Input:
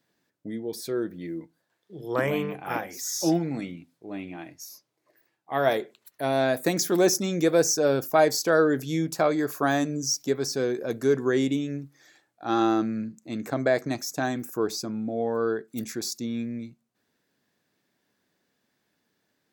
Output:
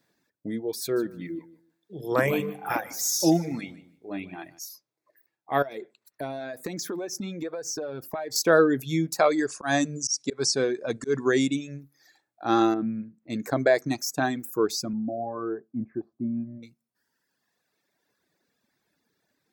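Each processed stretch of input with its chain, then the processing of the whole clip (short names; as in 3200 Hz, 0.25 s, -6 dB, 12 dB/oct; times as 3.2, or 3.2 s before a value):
0.81–4.59 high shelf 6100 Hz +5 dB + feedback echo 0.151 s, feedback 20%, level -10 dB
5.62–8.36 LPF 4000 Hz 6 dB/oct + compressor 20:1, threshold -30 dBFS
9.18–11.8 Chebyshev low-pass 10000 Hz, order 10 + high shelf 2900 Hz +6 dB + auto swell 0.127 s
12.74–13.3 upward compressor, threshold -47 dBFS + air absorption 410 m
14.93–16.63 LPF 1100 Hz 24 dB/oct + notch comb 470 Hz
whole clip: reverb removal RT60 1.9 s; notch 3000 Hz, Q 10; gain +3 dB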